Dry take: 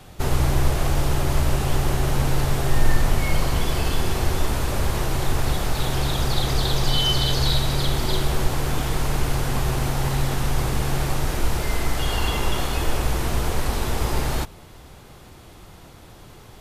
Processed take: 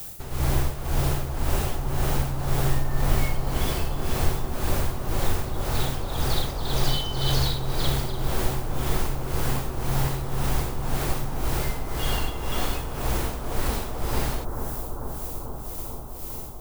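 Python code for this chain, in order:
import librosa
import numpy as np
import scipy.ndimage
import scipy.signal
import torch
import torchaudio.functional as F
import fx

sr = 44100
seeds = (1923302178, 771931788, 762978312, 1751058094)

y = fx.dmg_noise_colour(x, sr, seeds[0], colour='violet', level_db=-35.0)
y = y * (1.0 - 0.76 / 2.0 + 0.76 / 2.0 * np.cos(2.0 * np.pi * 1.9 * (np.arange(len(y)) / sr)))
y = fx.echo_bbd(y, sr, ms=441, stages=4096, feedback_pct=80, wet_db=-6.5)
y = y * librosa.db_to_amplitude(-2.0)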